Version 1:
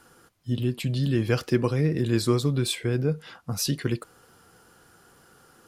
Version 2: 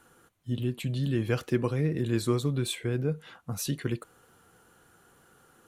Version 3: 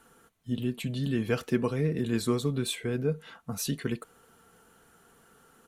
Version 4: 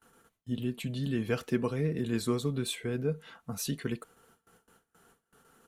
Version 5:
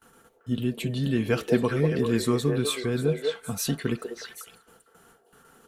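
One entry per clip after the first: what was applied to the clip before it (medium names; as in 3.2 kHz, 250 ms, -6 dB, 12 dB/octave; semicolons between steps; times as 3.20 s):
peaking EQ 5 kHz -11 dB 0.24 oct; trim -4 dB
comb 4.5 ms, depth 42%
gate with hold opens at -49 dBFS; trim -2.5 dB
repeats whose band climbs or falls 195 ms, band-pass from 550 Hz, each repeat 1.4 oct, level -0.5 dB; trim +6 dB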